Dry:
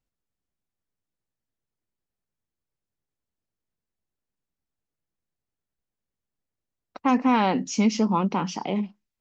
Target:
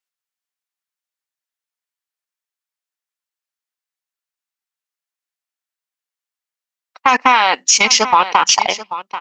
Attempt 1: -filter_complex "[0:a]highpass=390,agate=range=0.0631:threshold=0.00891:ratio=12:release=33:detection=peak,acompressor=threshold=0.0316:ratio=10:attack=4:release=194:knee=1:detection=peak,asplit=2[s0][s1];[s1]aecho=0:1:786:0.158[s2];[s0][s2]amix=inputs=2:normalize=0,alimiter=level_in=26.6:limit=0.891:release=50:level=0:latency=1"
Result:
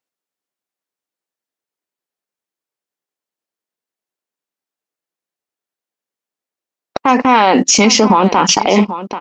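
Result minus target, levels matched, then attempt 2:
500 Hz band +8.0 dB
-filter_complex "[0:a]highpass=1200,agate=range=0.0631:threshold=0.00891:ratio=12:release=33:detection=peak,acompressor=threshold=0.0316:ratio=10:attack=4:release=194:knee=1:detection=peak,asplit=2[s0][s1];[s1]aecho=0:1:786:0.158[s2];[s0][s2]amix=inputs=2:normalize=0,alimiter=level_in=26.6:limit=0.891:release=50:level=0:latency=1"

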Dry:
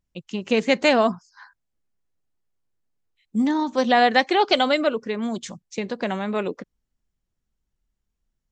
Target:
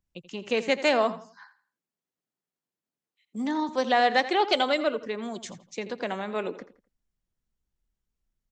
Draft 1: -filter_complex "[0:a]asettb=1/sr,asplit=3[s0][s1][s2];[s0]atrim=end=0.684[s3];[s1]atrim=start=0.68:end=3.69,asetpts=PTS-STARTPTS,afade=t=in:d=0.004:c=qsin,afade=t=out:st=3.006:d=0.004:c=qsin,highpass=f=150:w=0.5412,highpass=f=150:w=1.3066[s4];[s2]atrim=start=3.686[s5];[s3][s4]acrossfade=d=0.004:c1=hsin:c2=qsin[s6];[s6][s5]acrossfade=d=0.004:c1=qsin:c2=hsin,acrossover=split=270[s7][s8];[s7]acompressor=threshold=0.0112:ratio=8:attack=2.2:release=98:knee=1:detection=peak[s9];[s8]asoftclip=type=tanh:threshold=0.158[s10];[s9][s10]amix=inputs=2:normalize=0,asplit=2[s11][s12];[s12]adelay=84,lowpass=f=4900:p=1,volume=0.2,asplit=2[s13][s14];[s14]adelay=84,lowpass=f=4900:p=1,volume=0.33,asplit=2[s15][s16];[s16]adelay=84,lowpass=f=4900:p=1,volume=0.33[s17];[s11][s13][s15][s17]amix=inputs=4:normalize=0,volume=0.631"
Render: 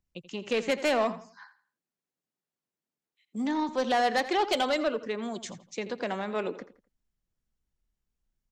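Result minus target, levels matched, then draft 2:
saturation: distortion +16 dB
-filter_complex "[0:a]asettb=1/sr,asplit=3[s0][s1][s2];[s0]atrim=end=0.684[s3];[s1]atrim=start=0.68:end=3.69,asetpts=PTS-STARTPTS,afade=t=in:d=0.004:c=qsin,afade=t=out:st=3.006:d=0.004:c=qsin,highpass=f=150:w=0.5412,highpass=f=150:w=1.3066[s4];[s2]atrim=start=3.686[s5];[s3][s4]acrossfade=d=0.004:c1=hsin:c2=qsin[s6];[s6][s5]acrossfade=d=0.004:c1=qsin:c2=hsin,acrossover=split=270[s7][s8];[s7]acompressor=threshold=0.0112:ratio=8:attack=2.2:release=98:knee=1:detection=peak[s9];[s8]asoftclip=type=tanh:threshold=0.631[s10];[s9][s10]amix=inputs=2:normalize=0,asplit=2[s11][s12];[s12]adelay=84,lowpass=f=4900:p=1,volume=0.2,asplit=2[s13][s14];[s14]adelay=84,lowpass=f=4900:p=1,volume=0.33,asplit=2[s15][s16];[s16]adelay=84,lowpass=f=4900:p=1,volume=0.33[s17];[s11][s13][s15][s17]amix=inputs=4:normalize=0,volume=0.631"

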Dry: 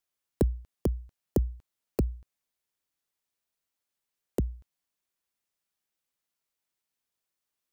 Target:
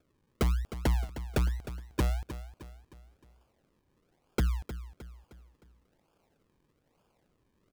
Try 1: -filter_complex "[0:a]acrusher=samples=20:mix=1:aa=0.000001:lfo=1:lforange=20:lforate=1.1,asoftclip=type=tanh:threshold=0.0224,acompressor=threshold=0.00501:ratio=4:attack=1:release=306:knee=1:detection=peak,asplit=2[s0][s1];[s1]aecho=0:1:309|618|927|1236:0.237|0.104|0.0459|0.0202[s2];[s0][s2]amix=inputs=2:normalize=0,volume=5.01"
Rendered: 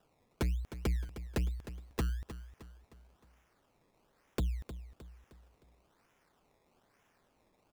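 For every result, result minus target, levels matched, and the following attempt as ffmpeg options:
compression: peak gain reduction +5 dB; decimation with a swept rate: distortion -8 dB
-filter_complex "[0:a]acrusher=samples=20:mix=1:aa=0.000001:lfo=1:lforange=20:lforate=1.1,asoftclip=type=tanh:threshold=0.0224,acompressor=threshold=0.0112:ratio=4:attack=1:release=306:knee=1:detection=peak,asplit=2[s0][s1];[s1]aecho=0:1:309|618|927|1236:0.237|0.104|0.0459|0.0202[s2];[s0][s2]amix=inputs=2:normalize=0,volume=5.01"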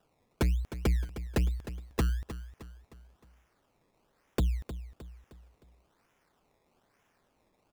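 decimation with a swept rate: distortion -8 dB
-filter_complex "[0:a]acrusher=samples=44:mix=1:aa=0.000001:lfo=1:lforange=44:lforate=1.1,asoftclip=type=tanh:threshold=0.0224,acompressor=threshold=0.0112:ratio=4:attack=1:release=306:knee=1:detection=peak,asplit=2[s0][s1];[s1]aecho=0:1:309|618|927|1236:0.237|0.104|0.0459|0.0202[s2];[s0][s2]amix=inputs=2:normalize=0,volume=5.01"

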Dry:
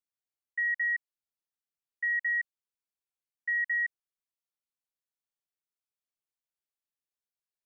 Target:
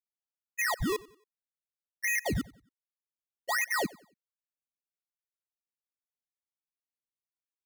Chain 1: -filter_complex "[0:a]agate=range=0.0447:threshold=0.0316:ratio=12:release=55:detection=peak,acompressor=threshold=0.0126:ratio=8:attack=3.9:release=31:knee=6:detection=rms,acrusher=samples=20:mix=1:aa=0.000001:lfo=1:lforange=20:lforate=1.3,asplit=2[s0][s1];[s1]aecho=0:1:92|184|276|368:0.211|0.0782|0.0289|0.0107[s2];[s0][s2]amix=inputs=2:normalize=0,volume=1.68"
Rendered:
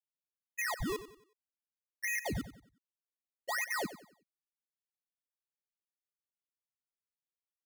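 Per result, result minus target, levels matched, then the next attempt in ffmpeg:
compression: peak gain reduction +6 dB; echo-to-direct +8.5 dB
-filter_complex "[0:a]agate=range=0.0447:threshold=0.0316:ratio=12:release=55:detection=peak,acompressor=threshold=0.0316:ratio=8:attack=3.9:release=31:knee=6:detection=rms,acrusher=samples=20:mix=1:aa=0.000001:lfo=1:lforange=20:lforate=1.3,asplit=2[s0][s1];[s1]aecho=0:1:92|184|276|368:0.211|0.0782|0.0289|0.0107[s2];[s0][s2]amix=inputs=2:normalize=0,volume=1.68"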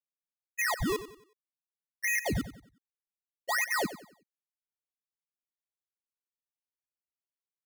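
echo-to-direct +8.5 dB
-filter_complex "[0:a]agate=range=0.0447:threshold=0.0316:ratio=12:release=55:detection=peak,acompressor=threshold=0.0316:ratio=8:attack=3.9:release=31:knee=6:detection=rms,acrusher=samples=20:mix=1:aa=0.000001:lfo=1:lforange=20:lforate=1.3,asplit=2[s0][s1];[s1]aecho=0:1:92|184|276:0.0794|0.0294|0.0109[s2];[s0][s2]amix=inputs=2:normalize=0,volume=1.68"

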